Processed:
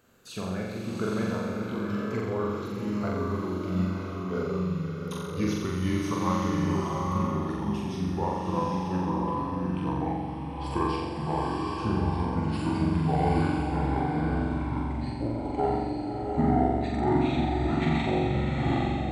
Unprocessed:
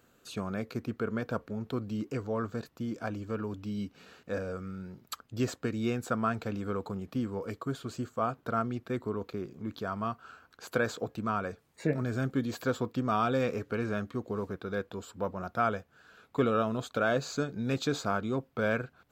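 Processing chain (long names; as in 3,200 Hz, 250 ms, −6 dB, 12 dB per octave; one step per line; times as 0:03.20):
pitch glide at a constant tempo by −11.5 semitones starting unshifted
flutter between parallel walls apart 7.5 metres, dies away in 1.2 s
slow-attack reverb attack 870 ms, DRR 1 dB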